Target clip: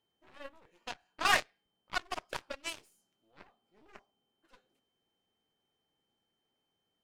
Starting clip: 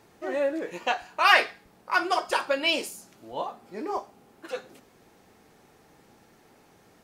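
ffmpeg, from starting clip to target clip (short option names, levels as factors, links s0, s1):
-af "aeval=exprs='val(0)+0.00178*sin(2*PI*3100*n/s)':c=same,aeval=exprs='0.473*(cos(1*acos(clip(val(0)/0.473,-1,1)))-cos(1*PI/2))+0.0473*(cos(4*acos(clip(val(0)/0.473,-1,1)))-cos(4*PI/2))+0.075*(cos(7*acos(clip(val(0)/0.473,-1,1)))-cos(7*PI/2))':c=same,volume=0.376"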